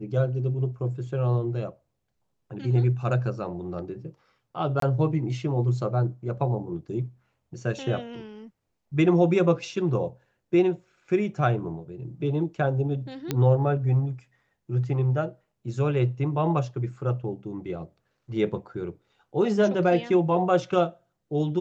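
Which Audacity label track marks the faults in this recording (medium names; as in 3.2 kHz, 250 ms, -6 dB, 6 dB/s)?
4.800000	4.820000	dropout 23 ms
13.310000	13.310000	pop -12 dBFS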